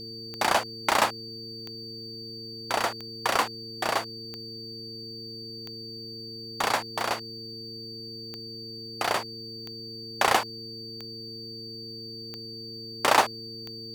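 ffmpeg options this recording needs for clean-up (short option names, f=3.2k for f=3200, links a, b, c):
-af "adeclick=t=4,bandreject=f=112.8:t=h:w=4,bandreject=f=225.6:t=h:w=4,bandreject=f=338.4:t=h:w=4,bandreject=f=451.2:t=h:w=4,bandreject=f=4.6k:w=30,agate=range=-21dB:threshold=-32dB"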